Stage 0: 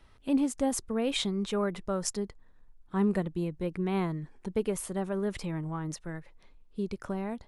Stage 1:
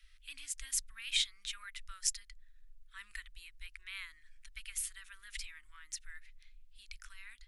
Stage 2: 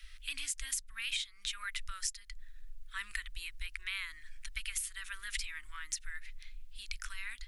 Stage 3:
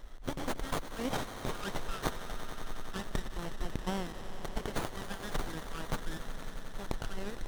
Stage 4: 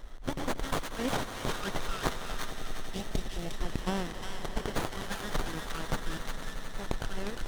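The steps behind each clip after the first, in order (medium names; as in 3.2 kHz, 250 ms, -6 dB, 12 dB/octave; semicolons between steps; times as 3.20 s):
inverse Chebyshev band-stop 100–790 Hz, stop band 50 dB; trim +1 dB
compression 12:1, threshold -44 dBFS, peak gain reduction 17.5 dB; trim +10.5 dB
on a send: echo with a slow build-up 91 ms, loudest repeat 5, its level -14.5 dB; on the sum: sliding maximum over 17 samples; trim +5.5 dB
spectral replace 2.54–3.51 s, 840–2100 Hz after; feedback echo behind a high-pass 355 ms, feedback 32%, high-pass 1.4 kHz, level -3 dB; loudspeaker Doppler distortion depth 0.35 ms; trim +3 dB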